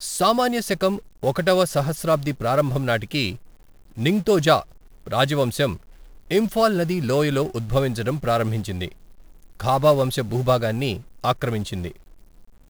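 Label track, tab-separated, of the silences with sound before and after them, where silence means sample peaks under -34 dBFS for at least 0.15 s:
0.990000	1.230000	silence
3.360000	3.970000	silence
4.620000	5.060000	silence
5.760000	6.310000	silence
8.880000	9.600000	silence
11.010000	11.240000	silence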